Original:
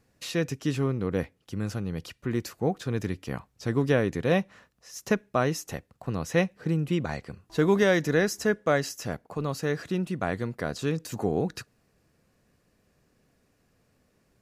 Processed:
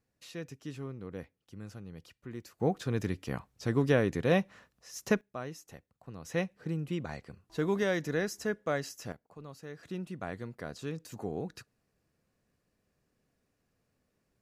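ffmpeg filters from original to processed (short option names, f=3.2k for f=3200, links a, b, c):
-af "asetnsamples=n=441:p=0,asendcmd='2.6 volume volume -2.5dB;5.21 volume volume -15dB;6.25 volume volume -8dB;9.12 volume volume -17dB;9.83 volume volume -10dB',volume=-14dB"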